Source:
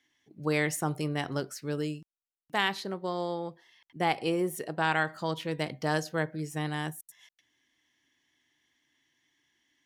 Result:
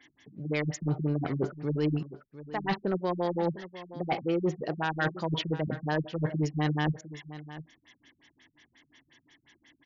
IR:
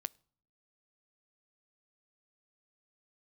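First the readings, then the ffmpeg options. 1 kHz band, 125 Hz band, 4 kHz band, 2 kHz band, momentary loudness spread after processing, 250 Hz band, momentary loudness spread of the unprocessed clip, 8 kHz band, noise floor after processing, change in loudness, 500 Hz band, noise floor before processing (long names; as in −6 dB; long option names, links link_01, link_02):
−2.0 dB, +5.0 dB, −3.0 dB, −4.0 dB, 14 LU, +3.0 dB, 8 LU, −8.0 dB, −75 dBFS, +0.5 dB, +1.0 dB, below −85 dBFS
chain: -af "areverse,acompressor=threshold=-37dB:ratio=20,areverse,aeval=exprs='0.0422*sin(PI/2*1.58*val(0)/0.0422)':channel_layout=same,aecho=1:1:703:0.178,afftfilt=real='re*lt(b*sr/1024,210*pow(7400/210,0.5+0.5*sin(2*PI*5.6*pts/sr)))':imag='im*lt(b*sr/1024,210*pow(7400/210,0.5+0.5*sin(2*PI*5.6*pts/sr)))':win_size=1024:overlap=0.75,volume=7dB"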